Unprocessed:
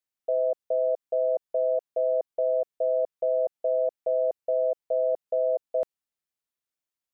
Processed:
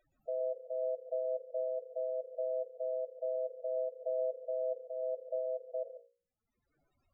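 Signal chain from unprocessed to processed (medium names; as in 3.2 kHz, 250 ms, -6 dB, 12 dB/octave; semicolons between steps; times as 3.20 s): tilt EQ -1.5 dB/octave; hum notches 60/120/180/240/300/360/420/480/540 Hz; peak limiter -27 dBFS, peak gain reduction 10.5 dB; upward compressor, threshold -40 dBFS; loudest bins only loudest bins 8; on a send at -5.5 dB: reverberation RT60 0.15 s, pre-delay 117 ms; on the sum: random flutter of the level, depth 55%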